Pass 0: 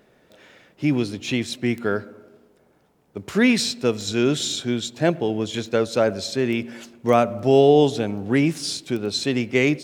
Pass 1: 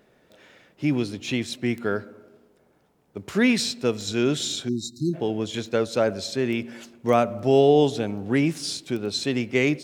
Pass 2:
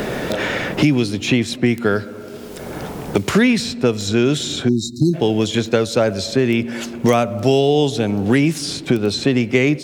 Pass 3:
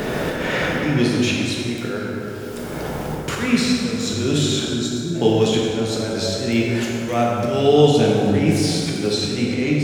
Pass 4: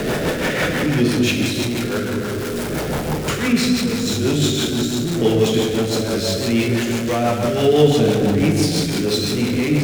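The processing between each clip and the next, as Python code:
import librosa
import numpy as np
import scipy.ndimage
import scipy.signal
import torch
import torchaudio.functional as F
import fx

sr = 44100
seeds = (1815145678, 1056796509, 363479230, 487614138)

y1 = fx.spec_erase(x, sr, start_s=4.68, length_s=0.46, low_hz=380.0, high_hz=3700.0)
y1 = y1 * 10.0 ** (-2.5 / 20.0)
y2 = fx.low_shelf(y1, sr, hz=130.0, db=6.0)
y2 = fx.band_squash(y2, sr, depth_pct=100)
y2 = y2 * 10.0 ** (6.0 / 20.0)
y3 = fx.auto_swell(y2, sr, attack_ms=229.0)
y3 = fx.rev_plate(y3, sr, seeds[0], rt60_s=3.0, hf_ratio=0.55, predelay_ms=0, drr_db=-3.5)
y3 = y3 * 10.0 ** (-2.5 / 20.0)
y4 = y3 + 0.5 * 10.0 ** (-19.5 / 20.0) * np.sign(y3)
y4 = fx.rotary(y4, sr, hz=6.0)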